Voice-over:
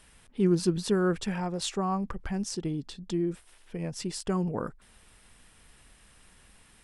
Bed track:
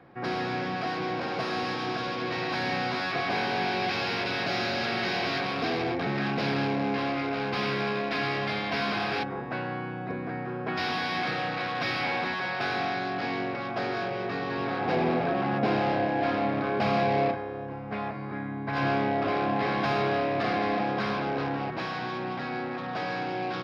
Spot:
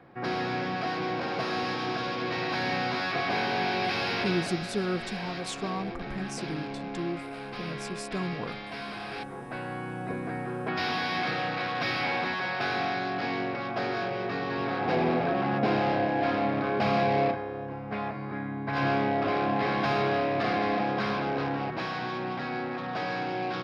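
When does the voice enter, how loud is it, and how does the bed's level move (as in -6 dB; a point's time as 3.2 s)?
3.85 s, -4.5 dB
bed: 4.26 s 0 dB
4.62 s -9 dB
8.99 s -9 dB
10.01 s 0 dB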